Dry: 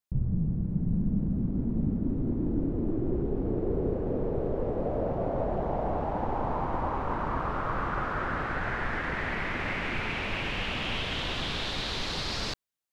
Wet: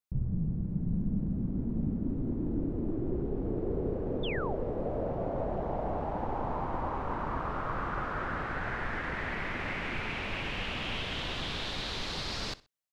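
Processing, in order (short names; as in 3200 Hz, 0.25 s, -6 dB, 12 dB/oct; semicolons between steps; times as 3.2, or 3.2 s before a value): feedback echo 63 ms, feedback 29%, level -19.5 dB; painted sound fall, 4.23–4.56, 590–3700 Hz -35 dBFS; gain -3.5 dB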